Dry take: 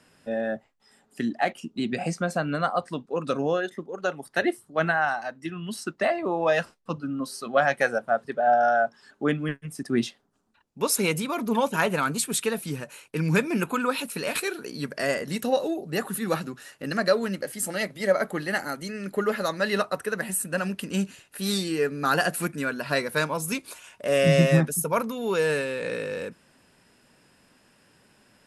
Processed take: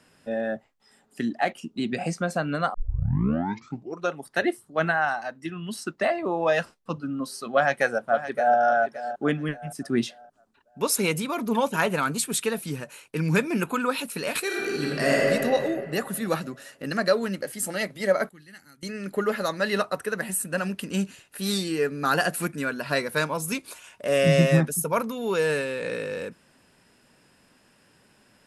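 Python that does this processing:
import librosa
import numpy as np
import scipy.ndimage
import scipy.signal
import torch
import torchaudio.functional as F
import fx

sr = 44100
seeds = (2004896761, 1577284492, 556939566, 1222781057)

y = fx.echo_throw(x, sr, start_s=7.53, length_s=1.05, ms=570, feedback_pct=35, wet_db=-12.0)
y = fx.reverb_throw(y, sr, start_s=14.45, length_s=0.83, rt60_s=2.4, drr_db=-4.5)
y = fx.tone_stack(y, sr, knobs='6-0-2', at=(18.29, 18.83))
y = fx.edit(y, sr, fx.tape_start(start_s=2.74, length_s=1.39), tone=tone)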